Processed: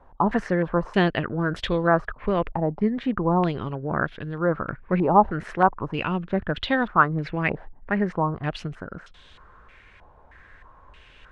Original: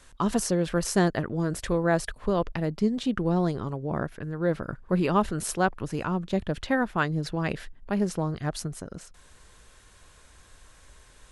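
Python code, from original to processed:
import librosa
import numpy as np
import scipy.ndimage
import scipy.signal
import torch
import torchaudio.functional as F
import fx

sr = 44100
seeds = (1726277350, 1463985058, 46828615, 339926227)

y = fx.filter_held_lowpass(x, sr, hz=3.2, low_hz=840.0, high_hz=3400.0)
y = y * 10.0 ** (1.5 / 20.0)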